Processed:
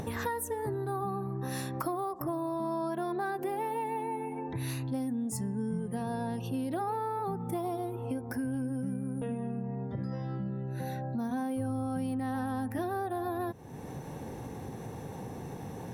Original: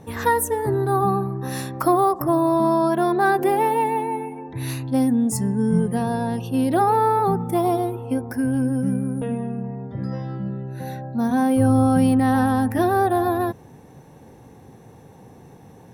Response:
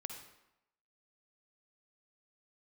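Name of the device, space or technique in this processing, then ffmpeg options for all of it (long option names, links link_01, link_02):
upward and downward compression: -af "acompressor=mode=upward:threshold=-21dB:ratio=2.5,acompressor=threshold=-23dB:ratio=6,volume=-7.5dB"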